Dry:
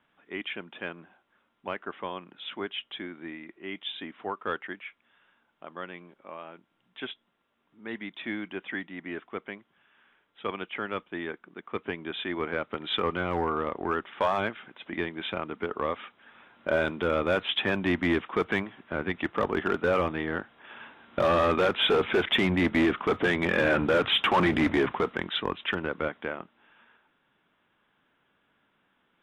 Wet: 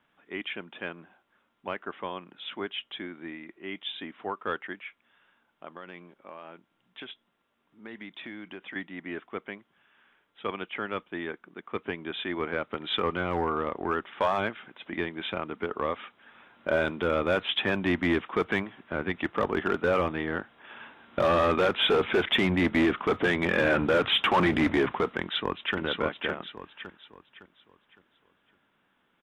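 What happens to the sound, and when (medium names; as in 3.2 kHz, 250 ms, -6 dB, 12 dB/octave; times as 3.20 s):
5.75–8.76 s: compression, threshold -37 dBFS
25.21–25.77 s: echo throw 560 ms, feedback 35%, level -3.5 dB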